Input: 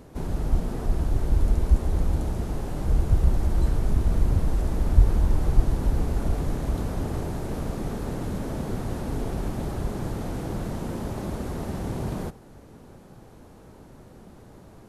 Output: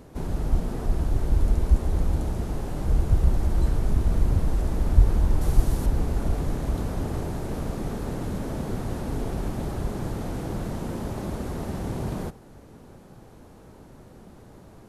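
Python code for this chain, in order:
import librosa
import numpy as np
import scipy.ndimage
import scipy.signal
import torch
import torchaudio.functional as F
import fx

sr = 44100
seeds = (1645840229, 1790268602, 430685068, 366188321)

y = fx.high_shelf(x, sr, hz=5000.0, db=10.0, at=(5.41, 5.86))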